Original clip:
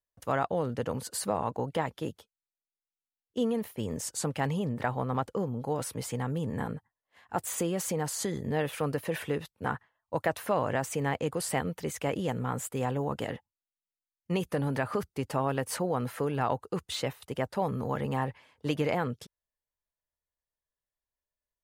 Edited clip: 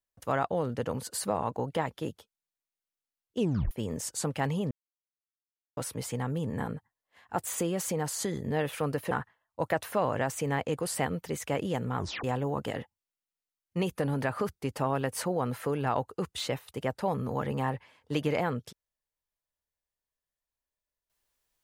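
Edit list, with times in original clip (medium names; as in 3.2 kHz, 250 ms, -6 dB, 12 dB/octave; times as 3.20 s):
3.39 s: tape stop 0.32 s
4.71–5.77 s: mute
9.11–9.65 s: delete
12.51 s: tape stop 0.27 s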